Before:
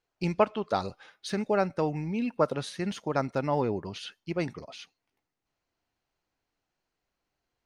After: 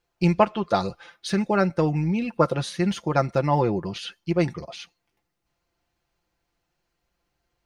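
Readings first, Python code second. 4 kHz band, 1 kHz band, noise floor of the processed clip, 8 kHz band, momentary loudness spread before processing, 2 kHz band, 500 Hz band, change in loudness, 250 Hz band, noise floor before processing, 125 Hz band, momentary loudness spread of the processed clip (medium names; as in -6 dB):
+6.0 dB, +6.0 dB, -78 dBFS, +5.5 dB, 13 LU, +6.0 dB, +4.5 dB, +6.0 dB, +7.5 dB, -85 dBFS, +9.5 dB, 12 LU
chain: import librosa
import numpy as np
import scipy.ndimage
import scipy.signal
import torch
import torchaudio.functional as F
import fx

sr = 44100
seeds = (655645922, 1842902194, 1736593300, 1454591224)

y = fx.peak_eq(x, sr, hz=67.0, db=10.5, octaves=1.2)
y = y + 0.57 * np.pad(y, (int(5.8 * sr / 1000.0), 0))[:len(y)]
y = y * librosa.db_to_amplitude(4.5)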